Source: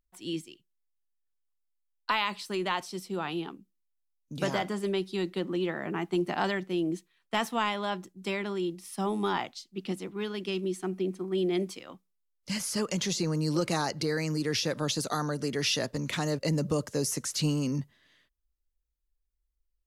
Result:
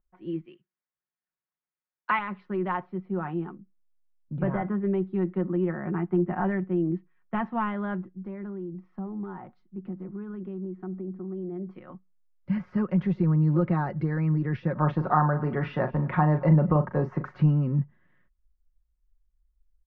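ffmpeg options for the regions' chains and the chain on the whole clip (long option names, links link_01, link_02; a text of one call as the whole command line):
ffmpeg -i in.wav -filter_complex "[0:a]asettb=1/sr,asplit=3[link_01][link_02][link_03];[link_01]atrim=end=0.454[link_04];[link_02]atrim=start=0.45:end=2.19,asetpts=PTS-STARTPTS,afade=type=in:duration=0.004:curve=qsin,afade=type=out:start_time=1.736:duration=0.004:curve=qsin,highpass=90,equalizer=frequency=2600:width_type=o:width=1.9:gain=9.5[link_05];[link_03]atrim=start=2.186[link_06];[link_04][link_05]acrossfade=duration=0.004:curve1=hsin:curve2=qsin[link_07];[link_07][link_06]acrossfade=duration=0.004:curve1=qsin:curve2=hsin,asettb=1/sr,asplit=3[link_08][link_09][link_10];[link_08]atrim=end=2.824[link_11];[link_09]atrim=start=2.82:end=6.91,asetpts=PTS-STARTPTS,afade=type=in:duration=0.004:curve=qsin,afade=type=out:start_time=4.086:duration=0.004:curve=qsin,volume=20.5dB,asoftclip=hard,volume=-20.5dB,acrossover=split=3300[link_12][link_13];[link_13]acompressor=threshold=-56dB:ratio=4:attack=1:release=60[link_14];[link_12][link_14]amix=inputs=2:normalize=0[link_15];[link_10]atrim=start=6.906[link_16];[link_11][link_15]acrossfade=duration=0.004:curve1=hsin:curve2=qsin[link_17];[link_17][link_16]acrossfade=duration=0.004:curve1=qsin:curve2=hsin,asettb=1/sr,asplit=3[link_18][link_19][link_20];[link_18]atrim=end=8.184[link_21];[link_19]atrim=start=8.18:end=11.75,asetpts=PTS-STARTPTS,afade=type=in:duration=0.004:curve=qsin,afade=type=out:start_time=3.566:duration=0.004:curve=qsin,equalizer=frequency=2900:width=0.89:gain=-9.5,asoftclip=type=hard:threshold=-21dB,acompressor=threshold=-38dB:ratio=4:attack=3.2:release=140:knee=1:detection=peak[link_22];[link_20]atrim=start=11.746[link_23];[link_21][link_22]acrossfade=duration=0.004:curve1=hsin:curve2=qsin[link_24];[link_24][link_23]acrossfade=duration=0.004:curve1=qsin:curve2=hsin,asettb=1/sr,asplit=3[link_25][link_26][link_27];[link_25]atrim=end=14.754[link_28];[link_26]atrim=start=14.75:end=17.43,asetpts=PTS-STARTPTS,afade=type=in:duration=0.004:curve=qsin,afade=type=out:start_time=2.676:duration=0.004:curve=qsin,equalizer=frequency=930:width_type=o:width=1.6:gain=11.5,asplit=2[link_29][link_30];[link_30]adelay=39,volume=-10dB[link_31];[link_29][link_31]amix=inputs=2:normalize=0,atrim=end_sample=118188,aecho=1:1:226:0.0794,atrim=end_sample=118188[link_32];[link_27]atrim=start=17.426[link_33];[link_28][link_32]acrossfade=duration=0.004:curve1=hsin:curve2=qsin[link_34];[link_34][link_33]acrossfade=duration=0.004:curve1=qsin:curve2=hsin,lowpass=frequency=1700:width=0.5412,lowpass=frequency=1700:width=1.3066,asubboost=boost=2.5:cutoff=230,aecho=1:1:5.5:0.51" out.wav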